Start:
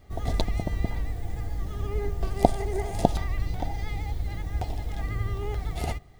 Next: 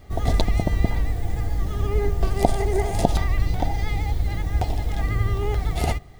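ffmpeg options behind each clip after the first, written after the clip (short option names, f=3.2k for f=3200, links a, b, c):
-af "alimiter=level_in=8dB:limit=-1dB:release=50:level=0:latency=1,volume=-1dB"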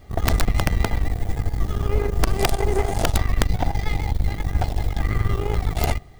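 -af "aeval=exprs='(mod(2.82*val(0)+1,2)-1)/2.82':c=same,aeval=exprs='0.355*(cos(1*acos(clip(val(0)/0.355,-1,1)))-cos(1*PI/2))+0.0708*(cos(2*acos(clip(val(0)/0.355,-1,1)))-cos(2*PI/2))+0.0708*(cos(4*acos(clip(val(0)/0.355,-1,1)))-cos(4*PI/2))+0.0178*(cos(8*acos(clip(val(0)/0.355,-1,1)))-cos(8*PI/2))':c=same"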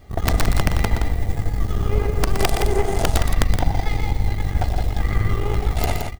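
-af "aecho=1:1:119.5|169.1:0.398|0.447"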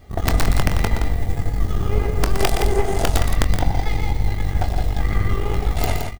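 -filter_complex "[0:a]asplit=2[a][b];[b]adelay=23,volume=-10dB[c];[a][c]amix=inputs=2:normalize=0"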